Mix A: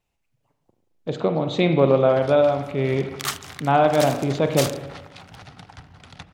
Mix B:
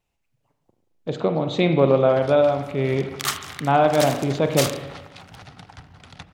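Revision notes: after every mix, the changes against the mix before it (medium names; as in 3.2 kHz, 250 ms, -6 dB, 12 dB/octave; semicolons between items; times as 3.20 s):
second sound: send +11.0 dB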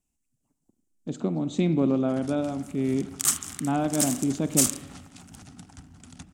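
speech: send -8.0 dB; master: add ten-band graphic EQ 125 Hz -7 dB, 250 Hz +10 dB, 500 Hz -12 dB, 1 kHz -7 dB, 2 kHz -8 dB, 4 kHz -10 dB, 8 kHz +12 dB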